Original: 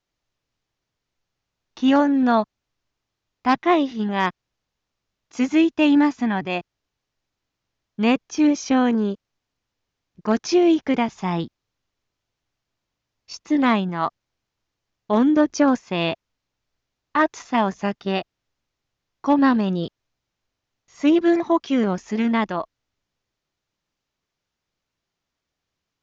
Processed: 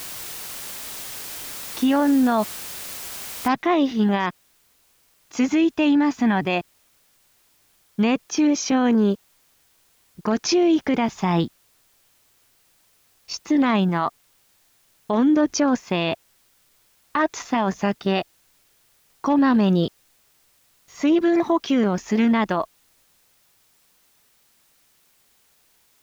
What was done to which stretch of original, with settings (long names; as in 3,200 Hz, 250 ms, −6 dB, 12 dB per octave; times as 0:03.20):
0:03.48: noise floor change −40 dB −67 dB
0:08.27–0:08.72: high-pass filter 120 Hz 6 dB per octave
whole clip: brickwall limiter −17.5 dBFS; level +5.5 dB